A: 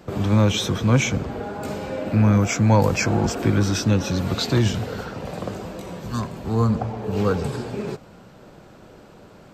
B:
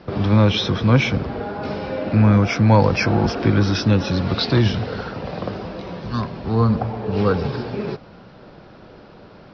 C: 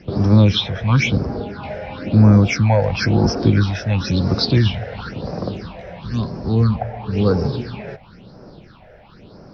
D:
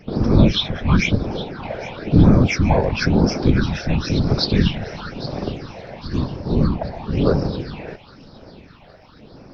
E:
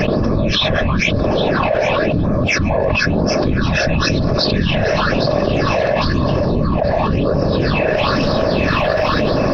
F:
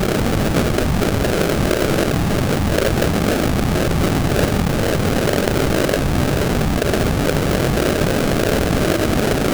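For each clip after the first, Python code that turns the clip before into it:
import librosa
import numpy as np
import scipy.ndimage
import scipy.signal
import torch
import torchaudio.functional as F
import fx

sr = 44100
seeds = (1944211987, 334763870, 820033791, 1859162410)

y1 = scipy.signal.sosfilt(scipy.signal.cheby1(6, 1.0, 5400.0, 'lowpass', fs=sr, output='sos'), x)
y1 = F.gain(torch.from_numpy(y1), 3.5).numpy()
y2 = fx.high_shelf(y1, sr, hz=4900.0, db=8.0)
y2 = fx.phaser_stages(y2, sr, stages=6, low_hz=280.0, high_hz=3100.0, hz=0.98, feedback_pct=45)
y2 = F.gain(torch.from_numpy(y2), 1.0).numpy()
y3 = fx.whisperise(y2, sr, seeds[0])
y3 = fx.echo_wet_highpass(y3, sr, ms=814, feedback_pct=48, hz=1700.0, wet_db=-14.5)
y3 = F.gain(torch.from_numpy(y3), -1.0).numpy()
y4 = fx.small_body(y3, sr, hz=(610.0, 1100.0, 1700.0, 2600.0), ring_ms=30, db=11)
y4 = fx.env_flatten(y4, sr, amount_pct=100)
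y4 = F.gain(torch.from_numpy(y4), -8.0).numpy()
y5 = y4 + 0.5 * 10.0 ** (-13.5 / 20.0) * np.diff(np.sign(y4), prepend=np.sign(y4[:1]))
y5 = fx.sample_hold(y5, sr, seeds[1], rate_hz=1000.0, jitter_pct=20)
y5 = F.gain(torch.from_numpy(y5), -1.5).numpy()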